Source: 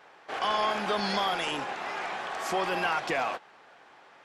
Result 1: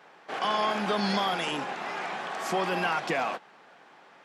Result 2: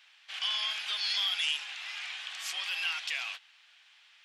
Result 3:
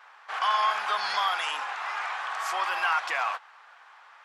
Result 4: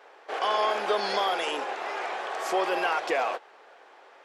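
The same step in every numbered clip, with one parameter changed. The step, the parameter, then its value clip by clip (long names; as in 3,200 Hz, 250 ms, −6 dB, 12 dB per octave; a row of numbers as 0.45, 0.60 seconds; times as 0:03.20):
high-pass with resonance, frequency: 170, 3,000, 1,100, 430 Hertz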